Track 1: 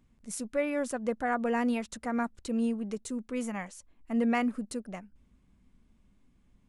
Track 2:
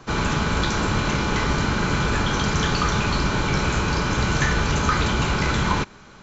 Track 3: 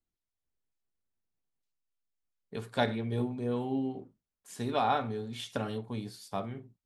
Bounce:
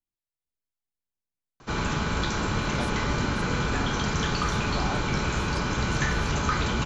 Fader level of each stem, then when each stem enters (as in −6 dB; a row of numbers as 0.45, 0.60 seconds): −13.0, −5.0, −7.0 decibels; 2.50, 1.60, 0.00 seconds